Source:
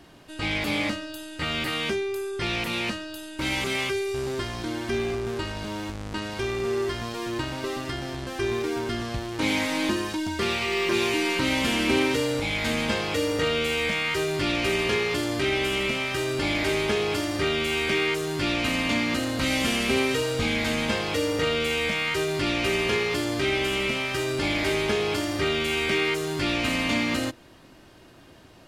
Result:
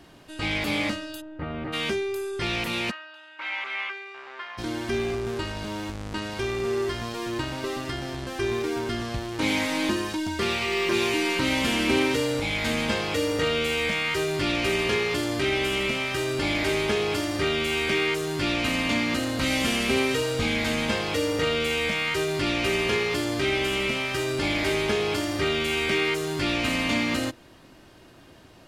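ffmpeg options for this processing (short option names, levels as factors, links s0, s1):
-filter_complex "[0:a]asplit=3[s0][s1][s2];[s0]afade=t=out:st=1.2:d=0.02[s3];[s1]lowpass=1000,afade=t=in:st=1.2:d=0.02,afade=t=out:st=1.72:d=0.02[s4];[s2]afade=t=in:st=1.72:d=0.02[s5];[s3][s4][s5]amix=inputs=3:normalize=0,asplit=3[s6][s7][s8];[s6]afade=t=out:st=2.9:d=0.02[s9];[s7]asuperpass=centerf=1500:order=4:qfactor=0.88,afade=t=in:st=2.9:d=0.02,afade=t=out:st=4.57:d=0.02[s10];[s8]afade=t=in:st=4.57:d=0.02[s11];[s9][s10][s11]amix=inputs=3:normalize=0"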